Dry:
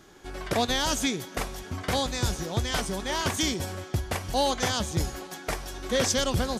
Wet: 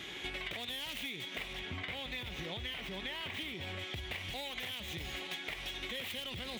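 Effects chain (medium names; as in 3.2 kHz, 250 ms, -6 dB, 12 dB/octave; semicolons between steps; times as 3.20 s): tracing distortion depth 0.41 ms; 1.53–3.79 s: treble shelf 4.5 kHz -10.5 dB; peak limiter -26.5 dBFS, peak gain reduction 11 dB; high-pass 49 Hz; high-order bell 2.7 kHz +16 dB 1.2 oct; compression 10:1, threshold -41 dBFS, peak gain reduction 17.5 dB; trim +3 dB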